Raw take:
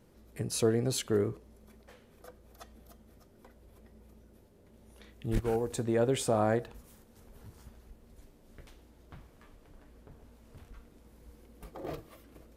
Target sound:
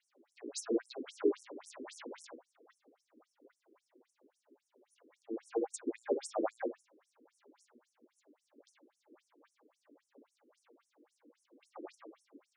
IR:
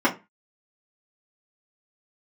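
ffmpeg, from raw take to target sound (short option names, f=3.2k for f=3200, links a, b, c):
-filter_complex "[0:a]asettb=1/sr,asplit=3[a][b][c];[a]atrim=end=1.044[d];[b]atrim=start=1.04:end=2.27,asetpts=PTS-STARTPTS,afade=t=in:d=0.004:c=qsin,afade=t=out:st=1.226:d=0.004:c=qsin,aeval=exprs='val(0)+0.5*0.0188*sgn(val(0))':c=same[e];[c]atrim=start=2.266[f];[d][e]acrossfade=d=0.004:c1=hsin:c2=qsin[g];[g][f]acrossfade=d=0.004:c1=qsin:c2=hsin,asplit=2[h][i];[1:a]atrim=start_sample=2205,adelay=82[j];[i][j]afir=irnorm=-1:irlink=0,volume=-18.5dB[k];[h][k]amix=inputs=2:normalize=0,afftfilt=real='re*between(b*sr/1024,330*pow(7900/330,0.5+0.5*sin(2*PI*3.7*pts/sr))/1.41,330*pow(7900/330,0.5+0.5*sin(2*PI*3.7*pts/sr))*1.41)':imag='im*between(b*sr/1024,330*pow(7900/330,0.5+0.5*sin(2*PI*3.7*pts/sr))/1.41,330*pow(7900/330,0.5+0.5*sin(2*PI*3.7*pts/sr))*1.41)':win_size=1024:overlap=0.75,volume=-2dB"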